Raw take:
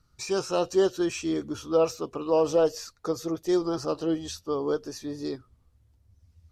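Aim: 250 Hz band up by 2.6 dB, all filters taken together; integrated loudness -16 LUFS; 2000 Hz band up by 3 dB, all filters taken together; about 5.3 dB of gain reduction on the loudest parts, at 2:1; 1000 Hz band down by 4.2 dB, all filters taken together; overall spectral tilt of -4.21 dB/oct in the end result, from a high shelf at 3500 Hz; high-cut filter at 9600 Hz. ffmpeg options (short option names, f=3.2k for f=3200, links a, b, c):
-af "lowpass=9.6k,equalizer=f=250:t=o:g=5,equalizer=f=1k:t=o:g=-8,equalizer=f=2k:t=o:g=4.5,highshelf=f=3.5k:g=6,acompressor=threshold=-27dB:ratio=2,volume=14dB"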